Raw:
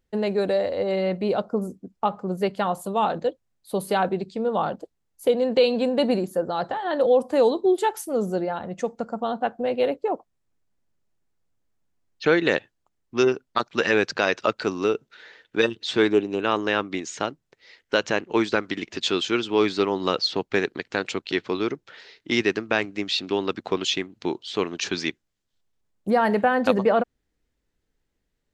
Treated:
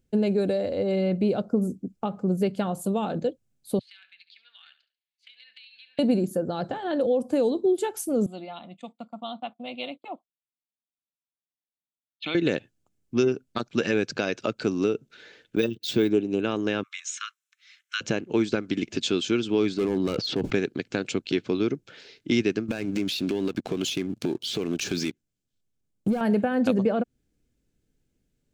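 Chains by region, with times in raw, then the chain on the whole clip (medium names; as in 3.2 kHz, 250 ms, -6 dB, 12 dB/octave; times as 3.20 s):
3.79–5.99 s: elliptic band-pass 1.8–4.3 kHz, stop band 70 dB + compression 12:1, threshold -45 dBFS + feedback delay 70 ms, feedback 30%, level -14 dB
8.26–12.35 s: gate -39 dBFS, range -16 dB + cabinet simulation 430–7900 Hz, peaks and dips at 550 Hz -6 dB, 850 Hz -6 dB, 3.6 kHz +9 dB, 6.6 kHz -6 dB + static phaser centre 1.6 kHz, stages 6
15.56–16.10 s: peaking EQ 1.4 kHz -4.5 dB 1.1 oct + gate -45 dBFS, range -18 dB + careless resampling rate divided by 2×, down filtered, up hold
16.83–18.01 s: steep high-pass 1.1 kHz 96 dB/octave + band-stop 4.7 kHz, Q 6
19.74–20.53 s: low-pass 2.2 kHz 6 dB/octave + hard clipper -21.5 dBFS + decay stretcher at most 40 dB/s
22.68–26.21 s: compression 4:1, threshold -38 dBFS + waveshaping leveller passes 3
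whole clip: band-stop 1.9 kHz, Q 7.3; compression 2:1, threshold -26 dBFS; graphic EQ 125/250/1000/4000/8000 Hz +6/+5/-9/-3/+3 dB; trim +1.5 dB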